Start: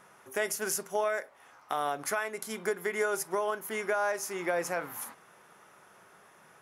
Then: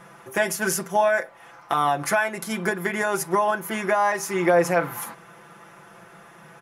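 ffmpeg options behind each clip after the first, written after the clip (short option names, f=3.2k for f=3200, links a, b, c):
-af "bass=f=250:g=6,treble=f=4k:g=-5,aecho=1:1:5.9:0.79,volume=8dB"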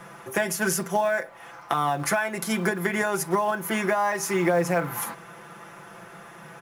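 -filter_complex "[0:a]acrossover=split=210[a][b];[b]acompressor=threshold=-27dB:ratio=2.5[c];[a][c]amix=inputs=2:normalize=0,asplit=2[d][e];[e]acrusher=bits=4:mode=log:mix=0:aa=0.000001,volume=-7.5dB[f];[d][f]amix=inputs=2:normalize=0"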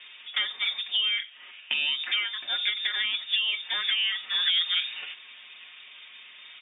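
-af "lowpass=f=3.2k:t=q:w=0.5098,lowpass=f=3.2k:t=q:w=0.6013,lowpass=f=3.2k:t=q:w=0.9,lowpass=f=3.2k:t=q:w=2.563,afreqshift=-3800,highpass=120,volume=-3dB"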